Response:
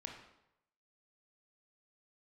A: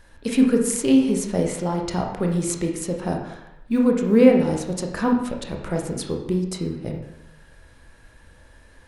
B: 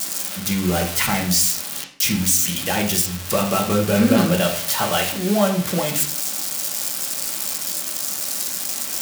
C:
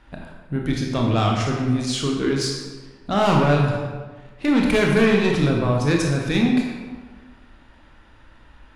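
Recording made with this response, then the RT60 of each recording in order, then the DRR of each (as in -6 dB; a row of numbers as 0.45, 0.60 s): A; 0.85, 0.55, 1.4 s; 1.5, -0.5, -0.5 dB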